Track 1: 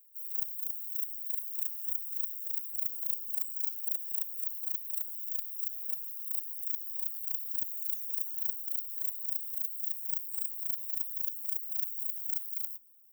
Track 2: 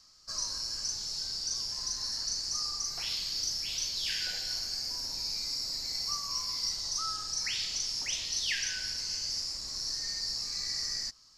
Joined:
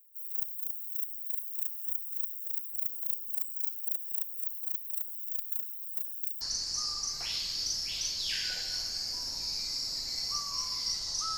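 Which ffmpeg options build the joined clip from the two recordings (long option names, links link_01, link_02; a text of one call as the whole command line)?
ffmpeg -i cue0.wav -i cue1.wav -filter_complex "[0:a]apad=whole_dur=11.37,atrim=end=11.37,asplit=2[link_01][link_02];[link_01]atrim=end=5.502[link_03];[link_02]atrim=start=5.498:end=6.412,asetpts=PTS-STARTPTS,areverse[link_04];[1:a]atrim=start=2.178:end=7.14[link_05];[link_03][link_04]acrossfade=duration=0.004:curve1=hsin:curve2=hsin[link_06];[link_06][link_05]acrossfade=duration=0.004:curve1=hsin:curve2=hsin" out.wav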